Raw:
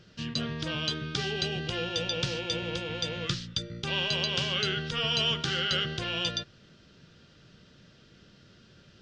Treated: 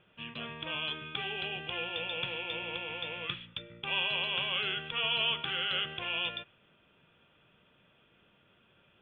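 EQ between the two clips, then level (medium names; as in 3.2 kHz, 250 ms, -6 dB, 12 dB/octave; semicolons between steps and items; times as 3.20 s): dynamic bell 2.5 kHz, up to +4 dB, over -44 dBFS, Q 1.1; rippled Chebyshev low-pass 3.5 kHz, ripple 9 dB; bass shelf 320 Hz -8 dB; +1.5 dB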